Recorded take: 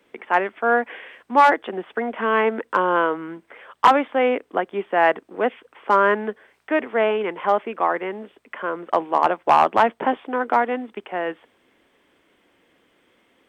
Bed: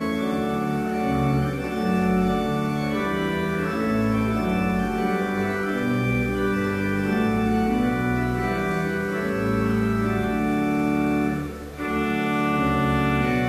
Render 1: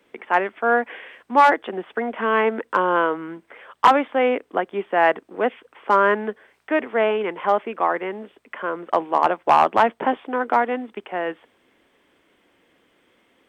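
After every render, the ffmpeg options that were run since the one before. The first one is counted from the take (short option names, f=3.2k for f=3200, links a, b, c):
-af anull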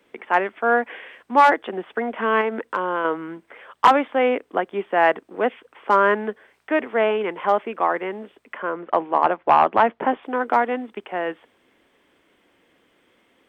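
-filter_complex "[0:a]asettb=1/sr,asplit=3[a][b][c];[a]atrim=end=2.414[d];[b]atrim=start=2.41:end=3.05,asetpts=PTS-STARTPTS,afade=t=in:d=0.004:c=qsin,afade=t=out:st=0.636:d=0.004:c=qsin,acompressor=threshold=-22dB:ratio=2:attack=3.2:release=140:knee=1:detection=peak[e];[c]atrim=start=3.046[f];[d][e]acrossfade=d=0.004:c1=hsin:c2=qsin[g];[g][f]acrossfade=d=0.004:c1=qsin:c2=hsin,asettb=1/sr,asplit=3[h][i][j];[h]atrim=end=8.574[k];[i]atrim=start=8.57:end=10.23,asetpts=PTS-STARTPTS,afade=t=in:d=0.004:c=qsin,afade=t=out:st=1.656:d=0.004:c=qsin,lowpass=2.9k[l];[j]atrim=start=10.226[m];[k][l]acrossfade=d=0.004:c1=hsin:c2=qsin[n];[n][m]acrossfade=d=0.004:c1=qsin:c2=hsin"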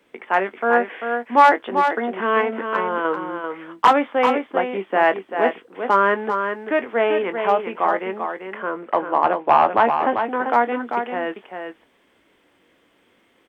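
-filter_complex "[0:a]asplit=2[a][b];[b]adelay=21,volume=-11dB[c];[a][c]amix=inputs=2:normalize=0,asplit=2[d][e];[e]aecho=0:1:392:0.473[f];[d][f]amix=inputs=2:normalize=0"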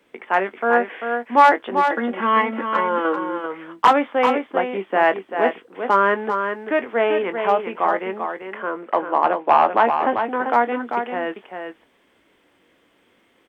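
-filter_complex "[0:a]asettb=1/sr,asplit=3[a][b][c];[a]atrim=end=1.904[d];[b]atrim=start=1.9:end=3.46,asetpts=PTS-STARTPTS,afade=t=in:d=0.004:c=qsin,afade=t=out:st=1.556:d=0.004:c=qsin,aecho=1:1:3.6:0.72,atrim=end_sample=68796[e];[c]atrim=start=3.456[f];[d][e]acrossfade=d=0.004:c1=hsin:c2=qsin[g];[g][f]acrossfade=d=0.004:c1=qsin:c2=hsin,asettb=1/sr,asplit=3[h][i][j];[h]atrim=end=8.424[k];[i]atrim=start=8.42:end=10.05,asetpts=PTS-STARTPTS,afade=t=in:d=0.004:c=qsin,afade=t=out:st=1.626:d=0.004:c=qsin,highpass=180[l];[j]atrim=start=10.046[m];[k][l]acrossfade=d=0.004:c1=hsin:c2=qsin[n];[n][m]acrossfade=d=0.004:c1=qsin:c2=hsin"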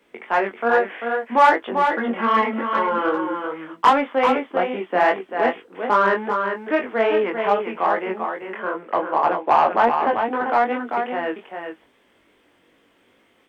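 -filter_complex "[0:a]flanger=delay=18.5:depth=4.1:speed=2.5,asplit=2[a][b];[b]asoftclip=type=tanh:threshold=-18.5dB,volume=-6dB[c];[a][c]amix=inputs=2:normalize=0"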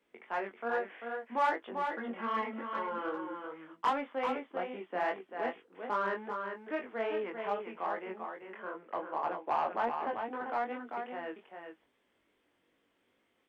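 -af "volume=-15.5dB"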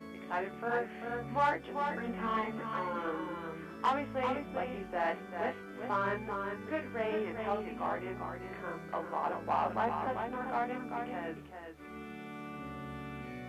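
-filter_complex "[1:a]volume=-22dB[a];[0:a][a]amix=inputs=2:normalize=0"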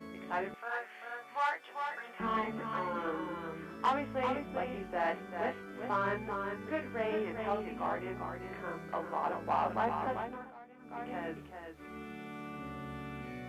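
-filter_complex "[0:a]asettb=1/sr,asplit=3[a][b][c];[a]atrim=end=0.544[d];[b]atrim=start=0.54:end=2.2,asetpts=PTS-STARTPTS,afade=t=in:d=0.004:c=qsin,afade=t=out:st=1.656:d=0.004:c=qsin,highpass=920[e];[c]atrim=start=2.196[f];[d][e]acrossfade=d=0.004:c1=hsin:c2=qsin[g];[g][f]acrossfade=d=0.004:c1=qsin:c2=hsin,asplit=3[h][i][j];[h]atrim=end=10.54,asetpts=PTS-STARTPTS,afade=t=out:st=10.15:d=0.39:silence=0.112202[k];[i]atrim=start=10.54:end=10.77,asetpts=PTS-STARTPTS,volume=-19dB[l];[j]atrim=start=10.77,asetpts=PTS-STARTPTS,afade=t=in:d=0.39:silence=0.112202[m];[k][l][m]concat=n=3:v=0:a=1"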